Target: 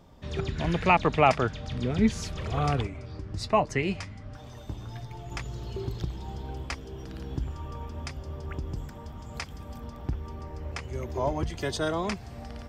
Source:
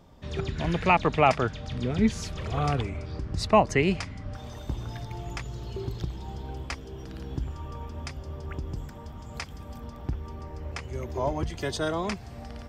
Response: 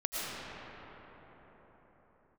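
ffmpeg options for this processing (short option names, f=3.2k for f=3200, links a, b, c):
-filter_complex "[0:a]asettb=1/sr,asplit=3[a][b][c];[a]atrim=end=2.874[d];[b]atrim=start=2.87:end=5.32,asetpts=PTS-STARTPTS,afade=t=in:d=0.004:c=qsin,afade=t=out:st=2.446:d=0.004:c=qsin,flanger=delay=6.5:depth=4.1:regen=52:speed=1.3:shape=triangular[e];[c]atrim=start=5.316[f];[d][e]acrossfade=d=0.004:c1=hsin:c2=qsin[g];[g][f]acrossfade=d=0.004:c1=qsin:c2=hsin"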